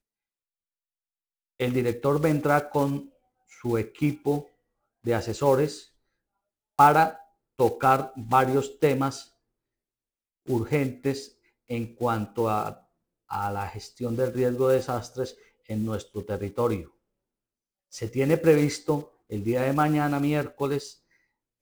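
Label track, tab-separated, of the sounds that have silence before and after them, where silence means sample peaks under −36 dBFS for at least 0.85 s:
1.600000	5.790000	sound
6.790000	9.210000	sound
10.480000	16.820000	sound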